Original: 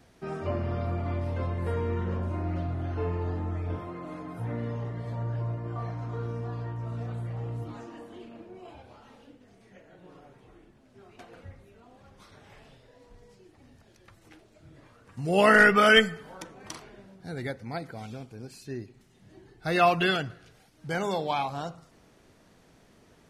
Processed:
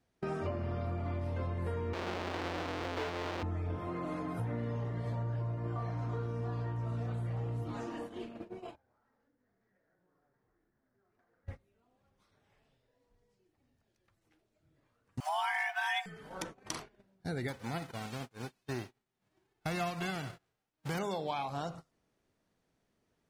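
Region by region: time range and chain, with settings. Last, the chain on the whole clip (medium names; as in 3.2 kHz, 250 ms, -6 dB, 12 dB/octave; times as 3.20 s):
1.93–3.43 s: square wave that keeps the level + three-band isolator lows -17 dB, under 280 Hz, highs -22 dB, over 5.1 kHz
8.75–11.47 s: CVSD coder 32 kbps + resonant high shelf 2.2 kHz -7.5 dB, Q 3 + compression 2.5:1, threshold -55 dBFS
15.20–16.06 s: companding laws mixed up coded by mu + steep high-pass 380 Hz 48 dB/octave + frequency shift +300 Hz
17.48–20.97 s: formants flattened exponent 0.3 + low-pass 1.1 kHz 6 dB/octave
whole clip: gate -45 dBFS, range -23 dB; compression 6:1, threshold -37 dBFS; trim +3.5 dB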